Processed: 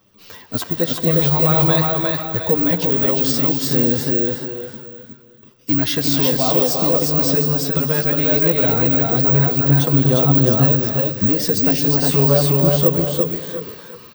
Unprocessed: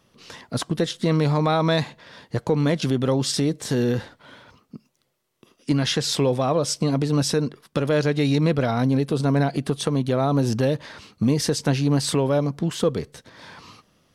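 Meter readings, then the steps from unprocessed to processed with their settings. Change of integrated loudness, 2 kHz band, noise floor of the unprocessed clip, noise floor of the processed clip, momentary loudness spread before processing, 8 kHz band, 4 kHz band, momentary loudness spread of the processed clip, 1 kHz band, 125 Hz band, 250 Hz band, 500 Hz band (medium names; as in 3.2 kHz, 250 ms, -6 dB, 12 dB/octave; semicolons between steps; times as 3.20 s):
+7.5 dB, +3.5 dB, -67 dBFS, -46 dBFS, 7 LU, +3.0 dB, +3.0 dB, 8 LU, +2.5 dB, +4.5 dB, +3.0 dB, +4.0 dB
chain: careless resampling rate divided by 2×, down filtered, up zero stuff; on a send: feedback delay 356 ms, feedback 29%, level -3 dB; on the sum: chorus voices 2, 0.2 Hz, delay 10 ms, depth 2.2 ms; gated-style reverb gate 390 ms rising, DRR 7 dB; trim +3.5 dB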